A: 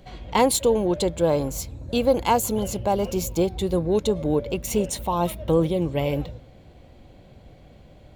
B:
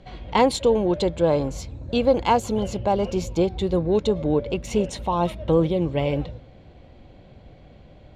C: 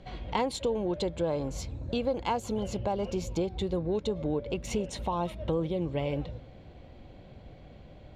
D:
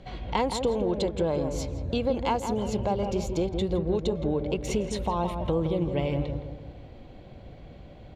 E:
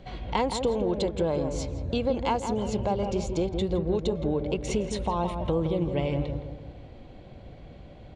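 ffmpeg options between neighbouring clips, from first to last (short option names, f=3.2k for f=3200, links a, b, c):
-af "lowpass=4.7k,volume=1dB"
-af "acompressor=threshold=-28dB:ratio=2.5,volume=-2dB"
-filter_complex "[0:a]asplit=2[a][b];[b]adelay=166,lowpass=f=1.3k:p=1,volume=-6dB,asplit=2[c][d];[d]adelay=166,lowpass=f=1.3k:p=1,volume=0.48,asplit=2[e][f];[f]adelay=166,lowpass=f=1.3k:p=1,volume=0.48,asplit=2[g][h];[h]adelay=166,lowpass=f=1.3k:p=1,volume=0.48,asplit=2[i][j];[j]adelay=166,lowpass=f=1.3k:p=1,volume=0.48,asplit=2[k][l];[l]adelay=166,lowpass=f=1.3k:p=1,volume=0.48[m];[a][c][e][g][i][k][m]amix=inputs=7:normalize=0,volume=2.5dB"
-af "aresample=22050,aresample=44100"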